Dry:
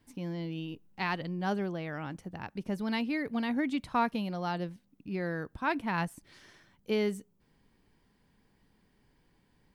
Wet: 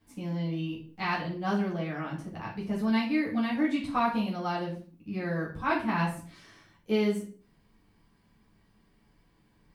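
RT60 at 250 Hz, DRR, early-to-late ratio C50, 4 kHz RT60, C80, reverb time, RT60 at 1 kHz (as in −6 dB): 0.50 s, −7.5 dB, 7.5 dB, 0.35 s, 12.5 dB, 0.45 s, 0.45 s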